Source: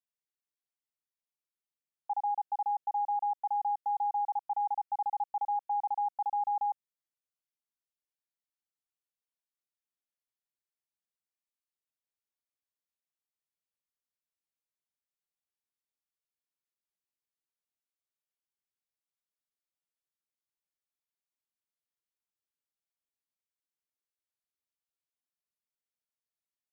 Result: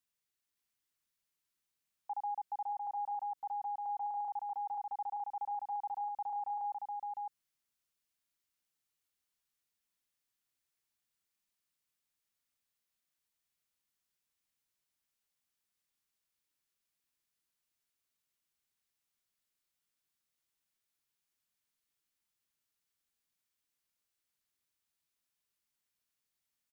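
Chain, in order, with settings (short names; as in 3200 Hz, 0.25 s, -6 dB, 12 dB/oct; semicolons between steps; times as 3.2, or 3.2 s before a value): bell 590 Hz -6 dB 1.7 oct; limiter -39.5 dBFS, peak gain reduction 8.5 dB; on a send: echo 0.558 s -3.5 dB; on the sum: gain +6.5 dB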